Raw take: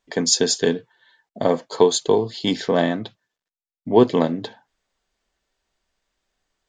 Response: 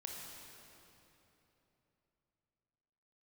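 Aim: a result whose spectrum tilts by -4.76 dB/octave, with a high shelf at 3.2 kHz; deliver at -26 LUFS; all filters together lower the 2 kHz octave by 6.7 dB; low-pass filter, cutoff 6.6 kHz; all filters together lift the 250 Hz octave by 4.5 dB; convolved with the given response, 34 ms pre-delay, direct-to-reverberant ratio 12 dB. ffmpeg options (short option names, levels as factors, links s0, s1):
-filter_complex "[0:a]lowpass=6600,equalizer=f=250:t=o:g=5.5,equalizer=f=2000:t=o:g=-7.5,highshelf=f=3200:g=-3.5,asplit=2[s0][s1];[1:a]atrim=start_sample=2205,adelay=34[s2];[s1][s2]afir=irnorm=-1:irlink=0,volume=0.316[s3];[s0][s3]amix=inputs=2:normalize=0,volume=0.447"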